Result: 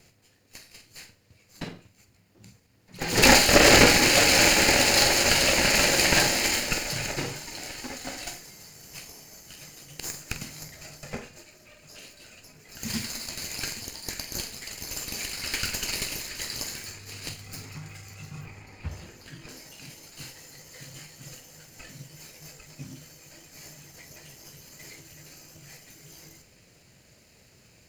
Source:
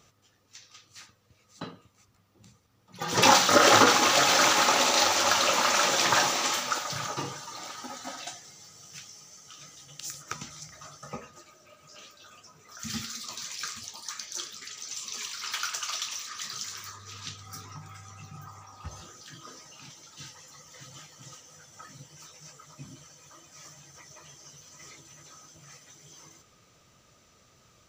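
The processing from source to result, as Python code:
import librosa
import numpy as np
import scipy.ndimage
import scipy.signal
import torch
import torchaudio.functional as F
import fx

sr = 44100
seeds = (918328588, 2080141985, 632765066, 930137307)

y = fx.lower_of_two(x, sr, delay_ms=0.43)
y = fx.bass_treble(y, sr, bass_db=2, treble_db=-8, at=(18.41, 19.49))
y = fx.room_flutter(y, sr, wall_m=7.9, rt60_s=0.25)
y = F.gain(torch.from_numpy(y), 4.5).numpy()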